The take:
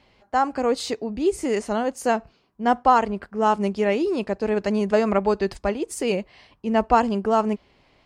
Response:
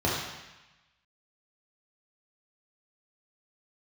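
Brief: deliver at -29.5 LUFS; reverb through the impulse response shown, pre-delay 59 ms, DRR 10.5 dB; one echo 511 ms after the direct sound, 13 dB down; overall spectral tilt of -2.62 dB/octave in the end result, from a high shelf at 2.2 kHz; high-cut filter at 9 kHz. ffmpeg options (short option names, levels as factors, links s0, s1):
-filter_complex "[0:a]lowpass=9000,highshelf=f=2200:g=-3.5,aecho=1:1:511:0.224,asplit=2[s0][s1];[1:a]atrim=start_sample=2205,adelay=59[s2];[s1][s2]afir=irnorm=-1:irlink=0,volume=0.0668[s3];[s0][s3]amix=inputs=2:normalize=0,volume=0.447"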